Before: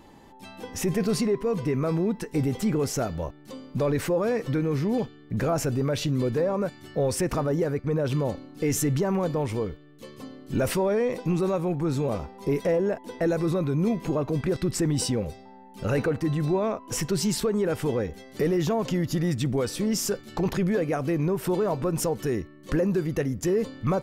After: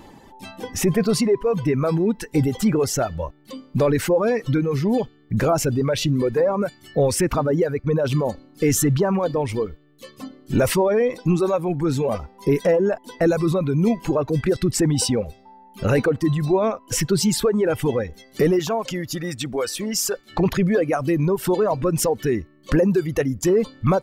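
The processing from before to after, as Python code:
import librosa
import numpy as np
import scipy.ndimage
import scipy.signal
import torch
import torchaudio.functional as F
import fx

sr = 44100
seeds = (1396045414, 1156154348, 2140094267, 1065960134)

y = fx.dereverb_blind(x, sr, rt60_s=1.8)
y = fx.low_shelf(y, sr, hz=320.0, db=-11.5, at=(18.59, 20.3))
y = y * librosa.db_to_amplitude(7.0)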